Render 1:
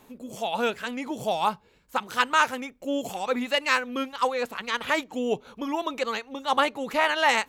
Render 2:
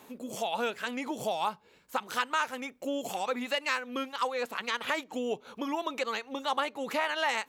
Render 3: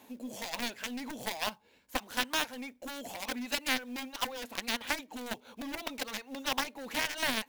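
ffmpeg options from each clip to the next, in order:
-af "acompressor=threshold=-33dB:ratio=2.5,highpass=f=250:p=1,volume=2.5dB"
-af "acrusher=bits=4:mode=log:mix=0:aa=0.000001,aeval=exprs='0.2*(cos(1*acos(clip(val(0)/0.2,-1,1)))-cos(1*PI/2))+0.0158*(cos(6*acos(clip(val(0)/0.2,-1,1)))-cos(6*PI/2))+0.0501*(cos(7*acos(clip(val(0)/0.2,-1,1)))-cos(7*PI/2))+0.0112*(cos(8*acos(clip(val(0)/0.2,-1,1)))-cos(8*PI/2))':c=same,equalizer=f=160:t=o:w=0.33:g=-10,equalizer=f=250:t=o:w=0.33:g=5,equalizer=f=400:t=o:w=0.33:g=-6,equalizer=f=1.25k:t=o:w=0.33:g=-8,equalizer=f=8k:t=o:w=0.33:g=-3"

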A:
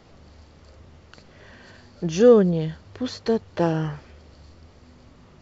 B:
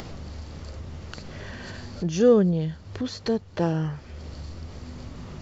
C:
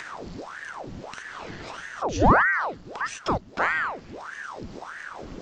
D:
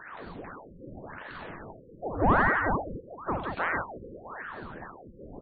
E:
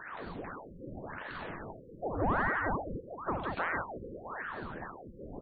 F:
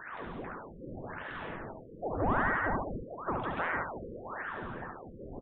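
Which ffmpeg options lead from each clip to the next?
-af "bass=f=250:g=5,treble=f=4k:g=3,acompressor=mode=upward:threshold=-21dB:ratio=2.5,volume=-4.5dB"
-af "aeval=exprs='val(0)*sin(2*PI*920*n/s+920*0.9/1.6*sin(2*PI*1.6*n/s))':c=same,volume=2.5dB"
-filter_complex "[0:a]asplit=2[a][b];[b]aecho=0:1:79|173|443|650:0.422|0.531|0.531|0.211[c];[a][c]amix=inputs=2:normalize=0,afftfilt=real='re*lt(b*sr/1024,540*pow(4700/540,0.5+0.5*sin(2*PI*0.92*pts/sr)))':imag='im*lt(b*sr/1024,540*pow(4700/540,0.5+0.5*sin(2*PI*0.92*pts/sr)))':win_size=1024:overlap=0.75,volume=-6dB"
-af "acompressor=threshold=-32dB:ratio=2"
-af "aecho=1:1:71:0.501,aresample=8000,aresample=44100"

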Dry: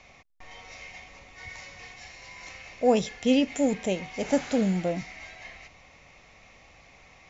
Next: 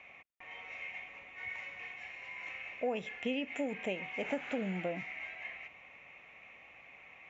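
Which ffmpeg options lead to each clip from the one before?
-af "highpass=f=280:p=1,highshelf=f=3.5k:t=q:w=3:g=-11,acompressor=threshold=-27dB:ratio=6,volume=-4.5dB"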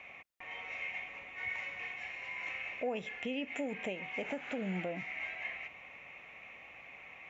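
-af "alimiter=level_in=6.5dB:limit=-24dB:level=0:latency=1:release=378,volume=-6.5dB,volume=3.5dB"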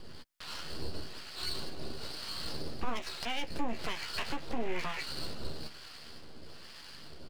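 -filter_complex "[0:a]aeval=exprs='abs(val(0))':c=same,asplit=2[a][b];[b]adelay=13,volume=-8dB[c];[a][c]amix=inputs=2:normalize=0,acrossover=split=790[d][e];[d]aeval=exprs='val(0)*(1-0.7/2+0.7/2*cos(2*PI*1.1*n/s))':c=same[f];[e]aeval=exprs='val(0)*(1-0.7/2-0.7/2*cos(2*PI*1.1*n/s))':c=same[g];[f][g]amix=inputs=2:normalize=0,volume=7.5dB"

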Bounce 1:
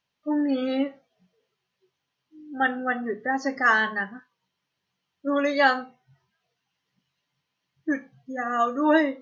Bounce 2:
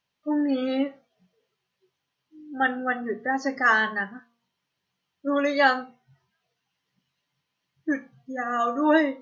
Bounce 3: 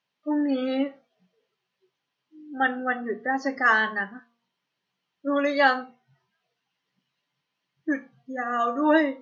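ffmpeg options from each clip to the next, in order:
-af "bandreject=f=234.4:t=h:w=4,bandreject=f=468.8:t=h:w=4,bandreject=f=703.2:t=h:w=4,bandreject=f=937.6:t=h:w=4,bandreject=f=1.172k:t=h:w=4,bandreject=f=1.4064k:t=h:w=4"
-af "highpass=160,lowpass=5.6k"

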